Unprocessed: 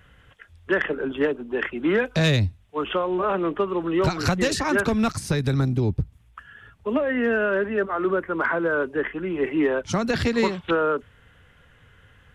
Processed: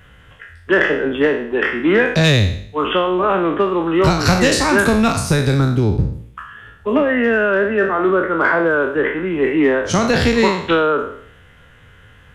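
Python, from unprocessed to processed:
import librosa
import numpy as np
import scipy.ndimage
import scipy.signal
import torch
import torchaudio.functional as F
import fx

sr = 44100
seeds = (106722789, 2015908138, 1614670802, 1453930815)

y = fx.spec_trails(x, sr, decay_s=0.61)
y = y * 10.0 ** (6.0 / 20.0)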